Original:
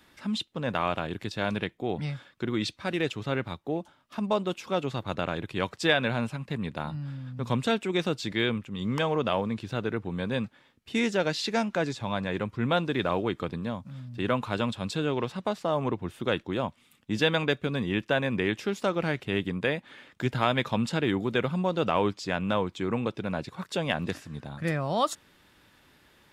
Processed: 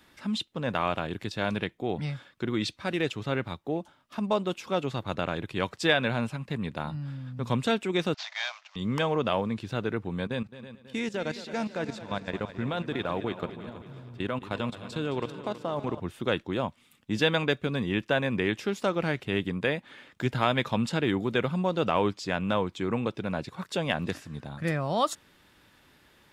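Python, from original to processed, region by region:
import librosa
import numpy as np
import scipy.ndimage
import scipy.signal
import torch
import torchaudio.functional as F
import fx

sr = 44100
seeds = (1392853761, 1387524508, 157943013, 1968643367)

y = fx.chain(x, sr, fx.cvsd(bps=32000),
    fx.steep_highpass(hz=620.0, slope=96), at=(8.14, 8.76))
y = fx.chain(y, sr, fx.level_steps(step_db=15),
    fx.echo_heads(ms=108, heads='second and third', feedback_pct=49, wet_db=-14), at=(10.27, 16.0))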